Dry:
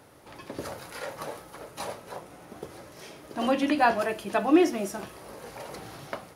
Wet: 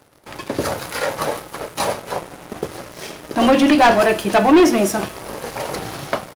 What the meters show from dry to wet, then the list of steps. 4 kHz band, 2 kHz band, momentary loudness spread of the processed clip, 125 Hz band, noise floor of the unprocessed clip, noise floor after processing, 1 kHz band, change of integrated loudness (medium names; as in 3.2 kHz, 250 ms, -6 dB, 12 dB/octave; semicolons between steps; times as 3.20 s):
+13.5 dB, +11.0 dB, 18 LU, +14.0 dB, -50 dBFS, -41 dBFS, +11.0 dB, +10.0 dB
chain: waveshaping leveller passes 3; delay 152 ms -23.5 dB; trim +3.5 dB